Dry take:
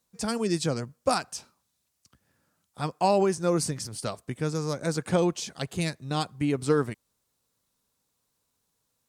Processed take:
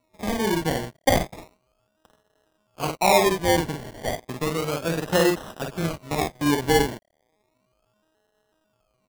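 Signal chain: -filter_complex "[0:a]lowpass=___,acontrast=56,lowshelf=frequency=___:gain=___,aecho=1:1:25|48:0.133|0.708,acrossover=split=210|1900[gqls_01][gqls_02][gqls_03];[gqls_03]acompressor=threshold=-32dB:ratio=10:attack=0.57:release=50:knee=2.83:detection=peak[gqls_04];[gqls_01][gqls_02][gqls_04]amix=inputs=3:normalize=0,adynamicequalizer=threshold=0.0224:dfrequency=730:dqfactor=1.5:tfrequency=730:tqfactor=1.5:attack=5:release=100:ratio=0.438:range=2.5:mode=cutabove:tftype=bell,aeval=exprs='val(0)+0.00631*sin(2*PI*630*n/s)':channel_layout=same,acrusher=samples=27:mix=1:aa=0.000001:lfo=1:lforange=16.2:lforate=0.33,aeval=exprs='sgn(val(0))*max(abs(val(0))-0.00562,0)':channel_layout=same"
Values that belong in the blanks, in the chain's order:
10k, 190, -11.5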